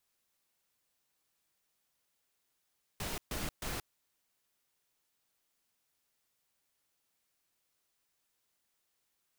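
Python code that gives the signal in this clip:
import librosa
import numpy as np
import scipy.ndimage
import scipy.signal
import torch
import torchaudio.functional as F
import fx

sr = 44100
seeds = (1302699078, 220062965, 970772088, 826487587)

y = fx.noise_burst(sr, seeds[0], colour='pink', on_s=0.18, off_s=0.13, bursts=3, level_db=-38.0)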